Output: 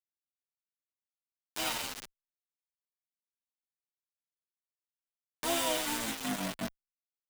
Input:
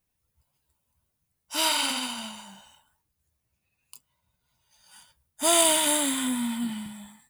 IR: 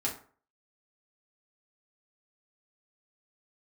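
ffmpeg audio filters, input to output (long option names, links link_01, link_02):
-filter_complex "[0:a]asplit=2[link_01][link_02];[link_02]asetrate=35002,aresample=44100,atempo=1.25992,volume=-6dB[link_03];[link_01][link_03]amix=inputs=2:normalize=0,aemphasis=mode=reproduction:type=50fm,acrusher=bits=3:mix=0:aa=0.000001,acompressor=mode=upward:threshold=-24dB:ratio=2.5,asplit=2[link_04][link_05];[link_05]adelay=7.7,afreqshift=1.4[link_06];[link_04][link_06]amix=inputs=2:normalize=1,volume=-6dB"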